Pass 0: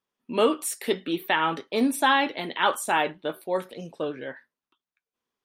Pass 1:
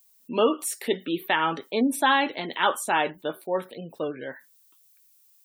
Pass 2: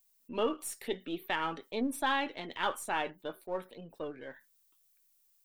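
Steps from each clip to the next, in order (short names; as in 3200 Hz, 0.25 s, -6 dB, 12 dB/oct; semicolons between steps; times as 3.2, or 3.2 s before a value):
added noise violet -60 dBFS; spectral gate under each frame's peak -30 dB strong
half-wave gain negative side -3 dB; gain -8.5 dB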